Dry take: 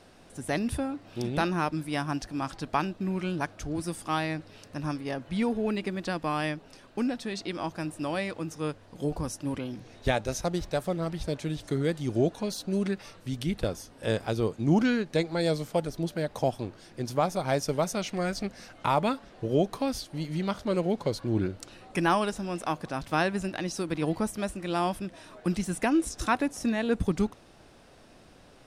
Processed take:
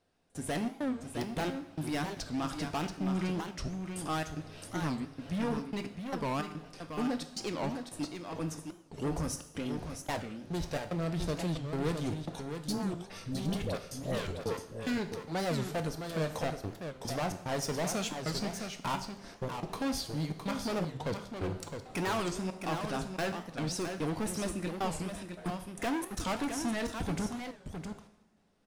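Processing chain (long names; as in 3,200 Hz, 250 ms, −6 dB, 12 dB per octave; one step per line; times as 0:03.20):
hard clipping −30.5 dBFS, distortion −5 dB
0:12.55–0:14.57: all-pass dispersion highs, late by 115 ms, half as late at 730 Hz
gate pattern "xxxxx.xxx.x..xx." 110 BPM −60 dB
noise gate with hold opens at −40 dBFS
single-tap delay 662 ms −7 dB
coupled-rooms reverb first 0.68 s, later 3 s, from −21 dB, DRR 7 dB
wow of a warped record 45 rpm, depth 250 cents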